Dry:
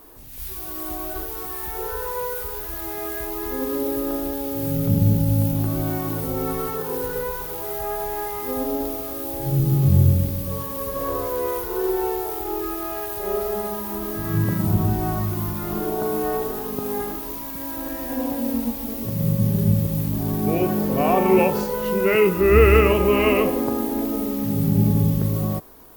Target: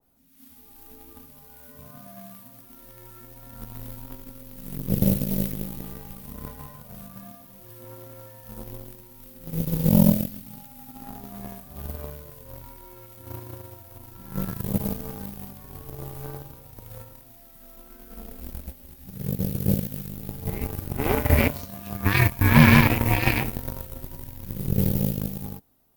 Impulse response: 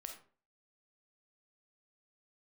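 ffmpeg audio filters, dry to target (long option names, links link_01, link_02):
-af "afreqshift=-300,aeval=exprs='0.794*(cos(1*acos(clip(val(0)/0.794,-1,1)))-cos(1*PI/2))+0.1*(cos(7*acos(clip(val(0)/0.794,-1,1)))-cos(7*PI/2))':channel_layout=same,adynamicequalizer=threshold=0.0112:dfrequency=1700:dqfactor=0.7:tfrequency=1700:tqfactor=0.7:attack=5:release=100:ratio=0.375:range=2.5:mode=boostabove:tftype=highshelf,volume=-1dB"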